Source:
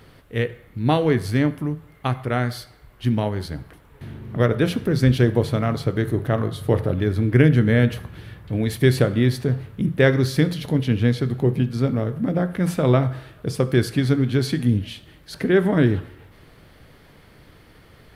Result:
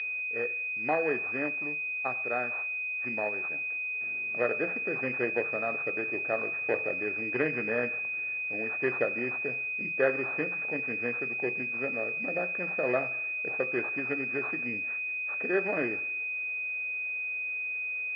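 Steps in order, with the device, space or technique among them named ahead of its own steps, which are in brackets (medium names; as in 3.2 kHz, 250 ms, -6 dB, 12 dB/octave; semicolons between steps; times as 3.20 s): toy sound module (decimation joined by straight lines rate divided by 8×; class-D stage that switches slowly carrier 2.5 kHz; cabinet simulation 710–4000 Hz, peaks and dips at 970 Hz -10 dB, 1.8 kHz +8 dB, 2.6 kHz -7 dB)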